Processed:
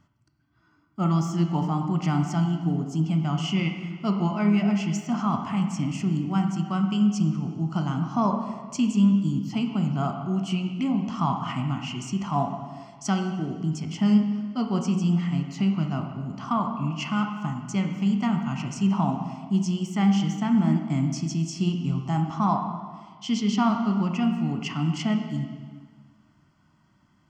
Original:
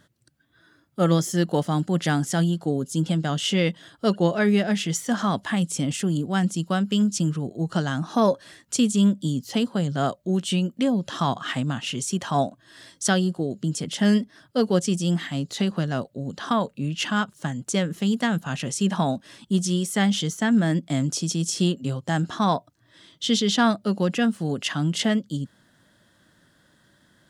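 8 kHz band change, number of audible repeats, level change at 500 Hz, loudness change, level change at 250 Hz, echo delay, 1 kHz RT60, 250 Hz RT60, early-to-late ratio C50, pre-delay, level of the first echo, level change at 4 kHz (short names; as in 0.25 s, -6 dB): -10.5 dB, none, -9.0 dB, -1.5 dB, 0.0 dB, none, 1.6 s, 1.5 s, 5.5 dB, 8 ms, none, -8.0 dB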